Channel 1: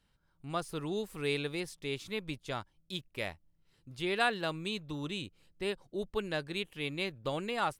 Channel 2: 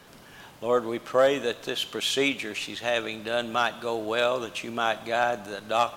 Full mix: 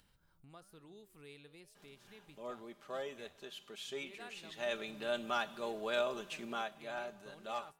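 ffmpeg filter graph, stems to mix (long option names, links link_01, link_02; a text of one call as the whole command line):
ffmpeg -i stem1.wav -i stem2.wav -filter_complex "[0:a]highshelf=frequency=11000:gain=10,flanger=delay=9.8:depth=5.5:regen=-88:speed=1.1:shape=sinusoidal,volume=-18dB[link_01];[1:a]aecho=1:1:5:0.6,adelay=1750,volume=-12dB,afade=type=in:start_time=4.27:duration=0.59:silence=0.354813,afade=type=out:start_time=6.49:duration=0.21:silence=0.446684[link_02];[link_01][link_02]amix=inputs=2:normalize=0,acompressor=mode=upward:threshold=-52dB:ratio=2.5" out.wav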